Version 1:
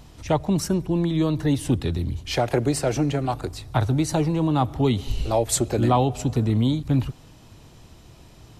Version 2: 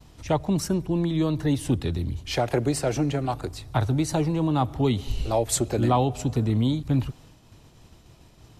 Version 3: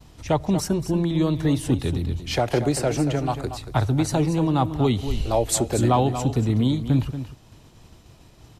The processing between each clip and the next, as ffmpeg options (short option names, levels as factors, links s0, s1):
-af "agate=range=0.0224:threshold=0.00631:ratio=3:detection=peak,volume=0.794"
-af "aecho=1:1:233:0.299,volume=1.26"